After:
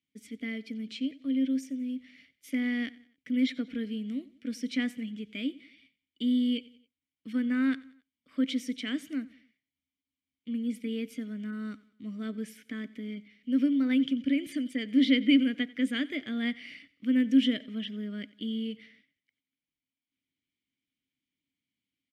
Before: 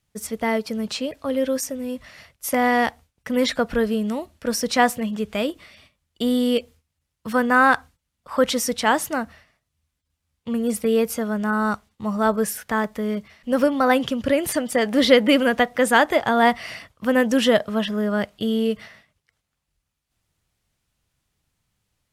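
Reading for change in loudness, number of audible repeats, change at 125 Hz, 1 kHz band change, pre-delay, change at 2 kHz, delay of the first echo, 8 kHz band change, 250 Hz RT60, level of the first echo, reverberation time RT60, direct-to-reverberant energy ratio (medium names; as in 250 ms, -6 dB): -9.0 dB, 2, under -10 dB, -31.5 dB, no reverb, -15.0 dB, 91 ms, under -20 dB, no reverb, -21.0 dB, no reverb, no reverb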